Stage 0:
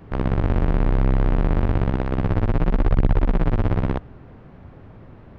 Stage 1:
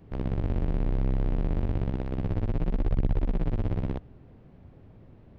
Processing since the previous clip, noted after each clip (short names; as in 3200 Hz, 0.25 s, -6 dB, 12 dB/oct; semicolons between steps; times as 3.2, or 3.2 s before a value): bell 1300 Hz -8 dB 1.6 oct; gain -7.5 dB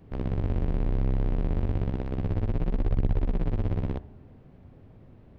reverb RT60 0.95 s, pre-delay 4 ms, DRR 16 dB